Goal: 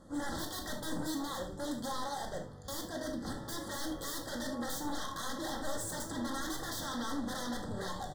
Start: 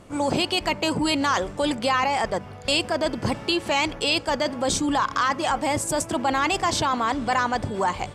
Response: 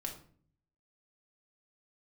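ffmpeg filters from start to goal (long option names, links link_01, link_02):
-filter_complex "[0:a]asettb=1/sr,asplit=3[link_01][link_02][link_03];[link_01]atrim=end=0.934[link_04];[link_02]atrim=start=0.93:end=3.37,asetpts=PTS-STARTPTS,afade=type=in:duration=0.004:curve=qsin,afade=type=out:start_time=2.436:duration=0.004:curve=qsin,equalizer=frequency=950:width=0.37:gain=-5[link_05];[link_03]atrim=start=3.366[link_06];[link_04][link_05]acrossfade=duration=0.004:curve1=hsin:curve2=qsin[link_07];[link_07][link_06]acrossfade=duration=0.004:curve1=qsin:curve2=hsin,aeval=exprs='0.0531*(abs(mod(val(0)/0.0531+3,4)-2)-1)':channel_layout=same,asuperstop=centerf=2500:order=12:qfactor=2,aecho=1:1:76|152|228:0.168|0.0554|0.0183[link_08];[1:a]atrim=start_sample=2205,afade=type=out:start_time=0.15:duration=0.01,atrim=end_sample=7056[link_09];[link_08][link_09]afir=irnorm=-1:irlink=0,volume=-7.5dB"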